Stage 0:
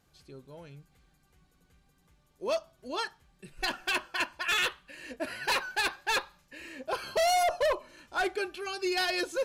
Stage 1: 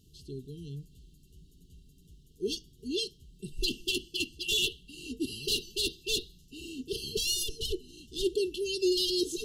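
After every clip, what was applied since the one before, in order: FFT band-reject 460–2700 Hz; low shelf 150 Hz +6.5 dB; in parallel at -0.5 dB: limiter -28.5 dBFS, peak gain reduction 8 dB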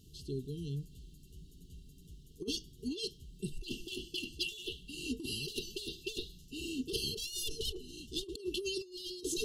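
negative-ratio compressor -35 dBFS, ratio -0.5; gain -2 dB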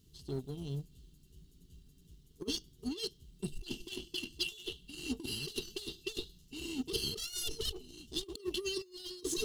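G.711 law mismatch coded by A; gain +2.5 dB

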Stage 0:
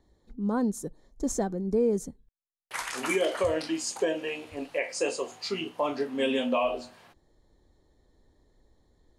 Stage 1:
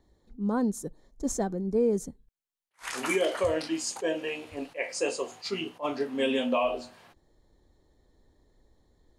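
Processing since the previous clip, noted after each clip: attack slew limiter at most 350 dB/s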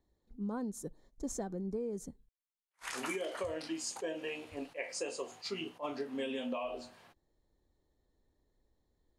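gate -56 dBFS, range -7 dB; compressor 10:1, threshold -29 dBFS, peak gain reduction 9 dB; gain -5 dB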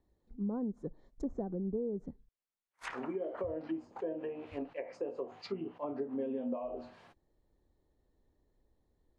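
treble ducked by the level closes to 630 Hz, closed at -35.5 dBFS; mismatched tape noise reduction decoder only; gain +2.5 dB

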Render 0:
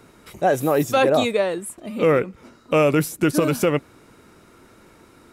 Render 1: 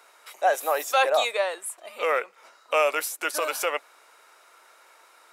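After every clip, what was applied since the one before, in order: HPF 630 Hz 24 dB/oct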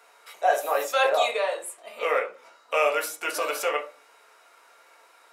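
reverb RT60 0.35 s, pre-delay 4 ms, DRR -0.5 dB; gain -3.5 dB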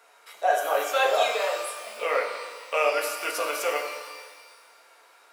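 shimmer reverb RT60 1.5 s, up +12 st, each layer -8 dB, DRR 5 dB; gain -1.5 dB

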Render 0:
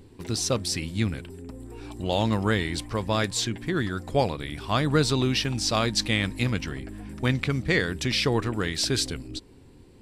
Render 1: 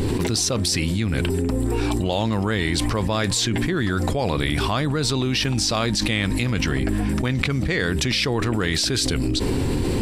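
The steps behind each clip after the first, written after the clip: fast leveller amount 100%; gain -4 dB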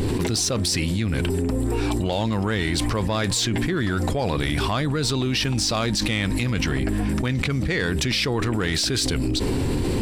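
soft clip -13 dBFS, distortion -21 dB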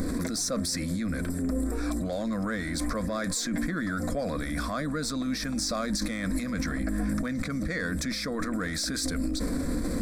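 limiter -21.5 dBFS, peak gain reduction 8 dB; fixed phaser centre 580 Hz, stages 8; gain +2.5 dB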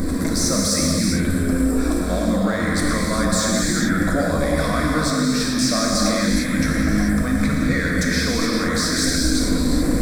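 companded quantiser 8-bit; non-linear reverb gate 0.46 s flat, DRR -4 dB; gain +5.5 dB

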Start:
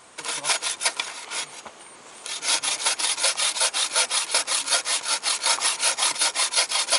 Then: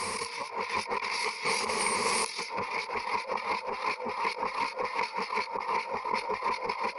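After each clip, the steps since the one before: treble ducked by the level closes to 690 Hz, closed at -18 dBFS; negative-ratio compressor -44 dBFS, ratio -1; ripple EQ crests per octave 0.87, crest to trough 16 dB; gain +6.5 dB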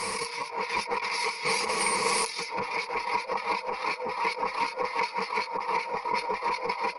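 comb 6.3 ms, depth 53%; gain +1 dB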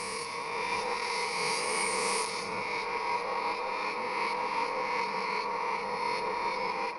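spectral swells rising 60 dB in 1.80 s; on a send at -6 dB: reverb RT60 3.2 s, pre-delay 53 ms; on the sum: gain -8 dB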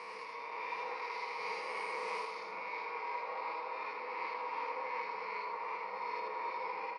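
BPF 410–2900 Hz; echo 80 ms -3.5 dB; gain -8.5 dB

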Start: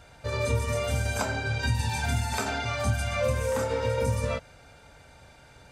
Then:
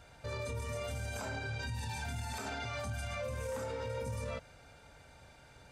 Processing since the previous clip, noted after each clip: limiter -26 dBFS, peak gain reduction 11 dB; gain -5 dB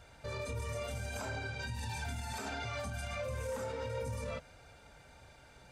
flange 1.5 Hz, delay 1.6 ms, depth 4.4 ms, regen -56%; gain +4 dB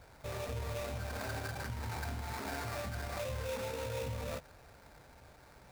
sample-rate reducer 3100 Hz, jitter 20%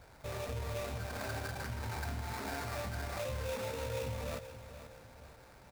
feedback echo 0.479 s, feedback 42%, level -12.5 dB

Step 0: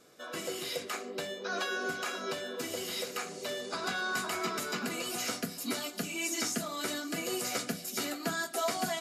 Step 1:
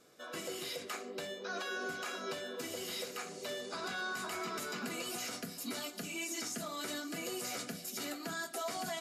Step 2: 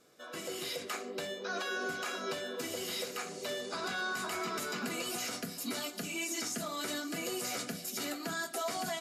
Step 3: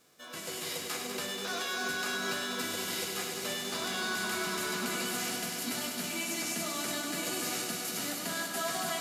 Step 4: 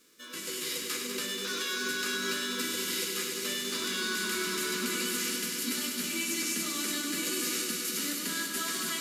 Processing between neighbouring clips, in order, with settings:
limiter -26.5 dBFS, peak gain reduction 7.5 dB; gain -3.5 dB
AGC gain up to 4 dB; gain -1 dB
spectral whitening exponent 0.6; multi-head echo 98 ms, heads all three, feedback 69%, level -9.5 dB
fixed phaser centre 300 Hz, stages 4; gain +3.5 dB

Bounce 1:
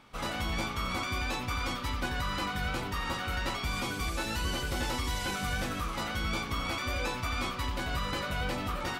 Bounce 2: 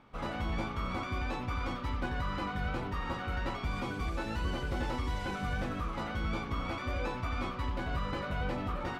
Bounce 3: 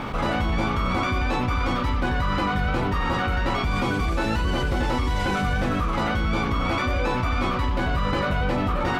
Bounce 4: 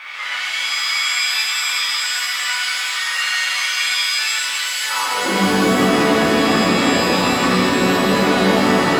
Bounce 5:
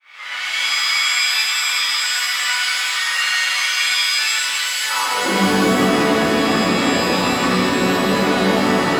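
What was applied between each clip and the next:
LPF 1200 Hz 6 dB/oct
fast leveller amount 70%; gain +8 dB
high-pass sweep 2000 Hz -> 200 Hz, 4.81–5.37; shimmer reverb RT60 2.3 s, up +7 st, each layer -2 dB, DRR -6.5 dB; gain -2.5 dB
opening faded in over 0.65 s; vocal rider within 4 dB 2 s

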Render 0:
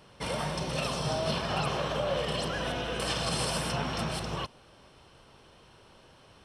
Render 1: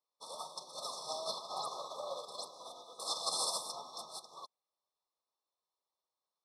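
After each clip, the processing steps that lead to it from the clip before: FFT band-reject 1300–3400 Hz; Bessel high-pass 1000 Hz, order 2; upward expander 2.5:1, over -55 dBFS; gain +2 dB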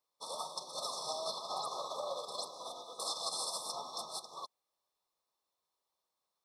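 compressor 10:1, threshold -39 dBFS, peak gain reduction 9 dB; gain +4.5 dB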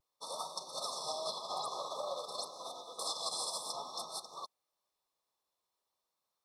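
vibrato 0.51 Hz 25 cents

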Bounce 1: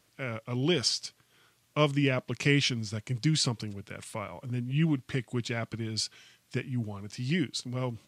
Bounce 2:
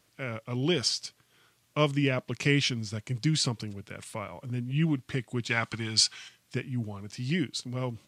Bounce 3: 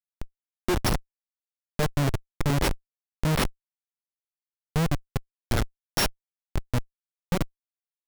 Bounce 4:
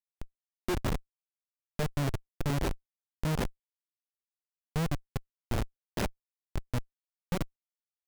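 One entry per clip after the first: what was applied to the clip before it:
spectral gain 5.5–6.29, 730–9600 Hz +9 dB
sample sorter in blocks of 8 samples; delay with a stepping band-pass 0.371 s, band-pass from 2700 Hz, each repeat 0.7 oct, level -9 dB; Schmitt trigger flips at -23 dBFS; gain +8.5 dB
median filter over 41 samples; gain -6 dB

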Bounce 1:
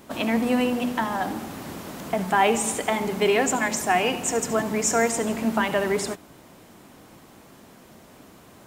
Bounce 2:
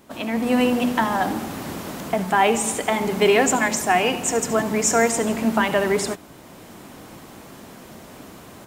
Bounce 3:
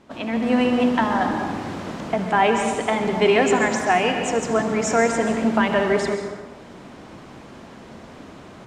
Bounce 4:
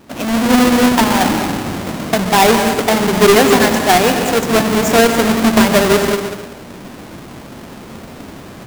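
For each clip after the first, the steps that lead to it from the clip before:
AGC gain up to 11 dB; gain -3.5 dB
air absorption 99 m; plate-style reverb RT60 1.3 s, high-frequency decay 0.55×, pre-delay 0.115 s, DRR 5.5 dB
half-waves squared off; gain +3.5 dB

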